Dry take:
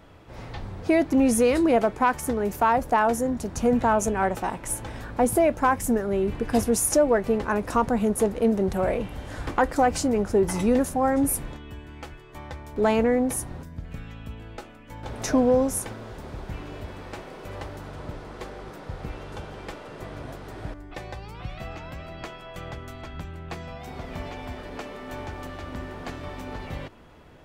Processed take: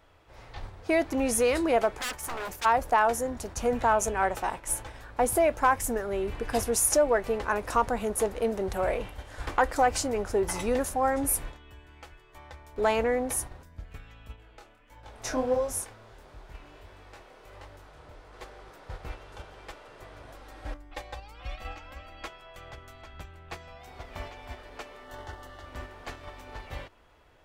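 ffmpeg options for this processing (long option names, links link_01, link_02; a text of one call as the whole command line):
ffmpeg -i in.wav -filter_complex "[0:a]asplit=3[link_01][link_02][link_03];[link_01]afade=type=out:start_time=1.97:duration=0.02[link_04];[link_02]aeval=exprs='0.0473*(abs(mod(val(0)/0.0473+3,4)-2)-1)':channel_layout=same,afade=type=in:start_time=1.97:duration=0.02,afade=type=out:start_time=2.64:duration=0.02[link_05];[link_03]afade=type=in:start_time=2.64:duration=0.02[link_06];[link_04][link_05][link_06]amix=inputs=3:normalize=0,asettb=1/sr,asplit=3[link_07][link_08][link_09];[link_07]atrim=end=14.364[link_10];[link_08]atrim=start=14.36:end=18.33,asetpts=PTS-STARTPTS,afade=type=in:duration=0.004:curve=qsin,afade=type=out:start_time=3.966:duration=0.004:curve=qsin,flanger=delay=20:depth=7.4:speed=1.5[link_11];[link_09]atrim=start=18.326[link_12];[link_10][link_11]acrossfade=duration=0.004:curve1=hsin:curve2=qsin[link_13];[link_13][link_12]acrossfade=duration=0.004:curve1=qsin:curve2=hsin,asettb=1/sr,asplit=3[link_14][link_15][link_16];[link_14]atrim=end=20.344[link_17];[link_15]atrim=start=20.34:end=22.28,asetpts=PTS-STARTPTS,afade=type=in:duration=0.004:curve=qsin,afade=type=out:start_time=1.936:duration=0.004:curve=qsin,aecho=1:1:3.7:0.65,atrim=end_sample=85554[link_18];[link_16]atrim=start=22.276[link_19];[link_17][link_18]acrossfade=duration=0.004:curve1=hsin:curve2=qsin[link_20];[link_20][link_19]acrossfade=duration=0.004:curve1=qsin:curve2=hsin,asettb=1/sr,asplit=3[link_21][link_22][link_23];[link_21]atrim=end=25.044[link_24];[link_22]atrim=start=25.04:end=25.66,asetpts=PTS-STARTPTS,afade=type=in:duration=0.004:curve=qsin,afade=type=out:start_time=0.616:duration=0.004:curve=qsin,asuperstop=centerf=2400:order=4:qfactor=5.2[link_25];[link_23]atrim=start=25.656[link_26];[link_24][link_25]acrossfade=duration=0.004:curve1=hsin:curve2=qsin[link_27];[link_27][link_26]acrossfade=duration=0.004:curve1=qsin:curve2=hsin,agate=range=-6dB:threshold=-34dB:ratio=16:detection=peak,equalizer=frequency=190:width=0.75:gain=-12.5" out.wav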